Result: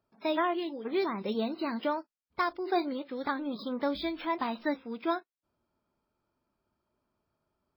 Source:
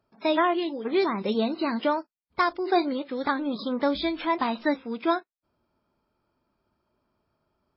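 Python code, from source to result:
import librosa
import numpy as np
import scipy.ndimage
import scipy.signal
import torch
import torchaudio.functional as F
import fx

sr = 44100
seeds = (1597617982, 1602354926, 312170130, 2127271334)

y = np.interp(np.arange(len(x)), np.arange(len(x))[::2], x[::2])
y = F.gain(torch.from_numpy(y), -6.0).numpy()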